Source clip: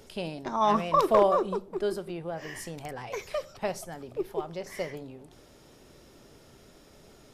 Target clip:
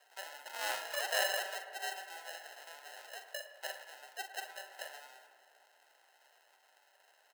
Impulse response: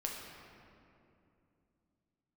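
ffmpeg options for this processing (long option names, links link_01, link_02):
-filter_complex "[0:a]acrusher=samples=38:mix=1:aa=0.000001,highpass=frequency=770:width=0.5412,highpass=frequency=770:width=1.3066,aecho=1:1:43|56:0.355|0.188,asplit=2[link_01][link_02];[1:a]atrim=start_sample=2205,lowpass=2700,adelay=109[link_03];[link_02][link_03]afir=irnorm=-1:irlink=0,volume=-11dB[link_04];[link_01][link_04]amix=inputs=2:normalize=0,volume=-6dB"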